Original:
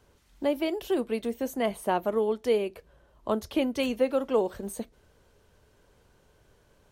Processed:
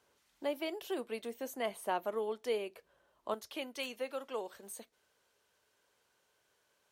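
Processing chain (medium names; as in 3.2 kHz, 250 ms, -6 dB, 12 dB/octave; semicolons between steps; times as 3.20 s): high-pass 640 Hz 6 dB/octave, from 3.34 s 1.4 kHz; trim -5 dB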